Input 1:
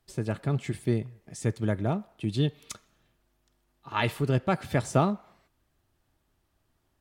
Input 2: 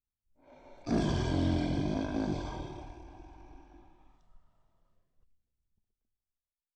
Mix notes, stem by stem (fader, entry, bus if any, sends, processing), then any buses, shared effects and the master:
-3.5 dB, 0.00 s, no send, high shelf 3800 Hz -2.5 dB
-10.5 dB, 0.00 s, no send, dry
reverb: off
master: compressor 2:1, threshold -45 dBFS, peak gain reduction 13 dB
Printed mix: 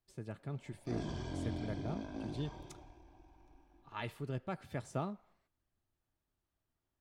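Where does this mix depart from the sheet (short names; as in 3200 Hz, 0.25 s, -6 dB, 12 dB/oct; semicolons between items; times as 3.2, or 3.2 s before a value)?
stem 1 -3.5 dB -> -14.5 dB; master: missing compressor 2:1, threshold -45 dBFS, peak gain reduction 13 dB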